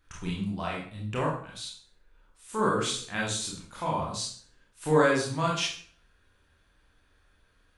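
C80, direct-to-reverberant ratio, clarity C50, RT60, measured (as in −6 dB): 8.5 dB, −4.0 dB, 3.0 dB, 0.50 s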